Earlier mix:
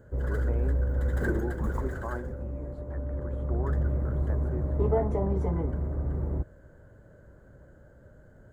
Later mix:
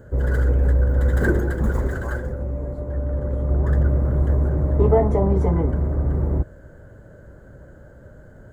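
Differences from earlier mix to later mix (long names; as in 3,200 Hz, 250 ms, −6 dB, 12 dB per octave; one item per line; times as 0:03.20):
speech: add high-shelf EQ 5,700 Hz +9 dB
background +9.0 dB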